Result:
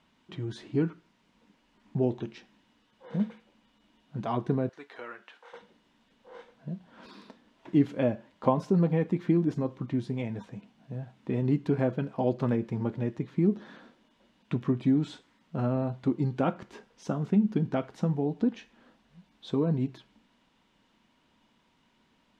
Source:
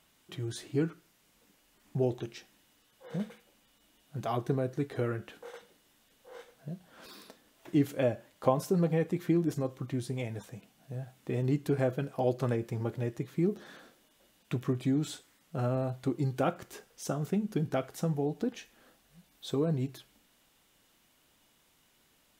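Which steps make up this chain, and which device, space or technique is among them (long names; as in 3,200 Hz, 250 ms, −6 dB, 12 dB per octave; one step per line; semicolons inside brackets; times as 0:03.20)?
inside a cardboard box (low-pass filter 3,900 Hz 12 dB per octave; hollow resonant body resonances 220/950 Hz, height 9 dB, ringing for 35 ms)
0:04.69–0:05.53: high-pass filter 920 Hz 12 dB per octave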